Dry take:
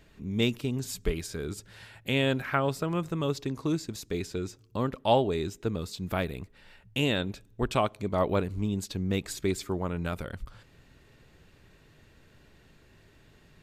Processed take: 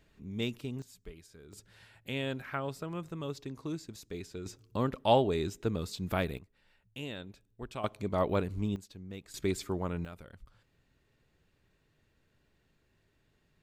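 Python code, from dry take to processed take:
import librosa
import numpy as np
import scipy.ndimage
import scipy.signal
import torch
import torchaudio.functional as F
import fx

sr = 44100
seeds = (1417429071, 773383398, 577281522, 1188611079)

y = fx.gain(x, sr, db=fx.steps((0.0, -8.0), (0.82, -19.0), (1.53, -9.0), (4.46, -1.5), (6.38, -14.0), (7.84, -3.0), (8.76, -15.5), (9.34, -3.0), (10.05, -14.0)))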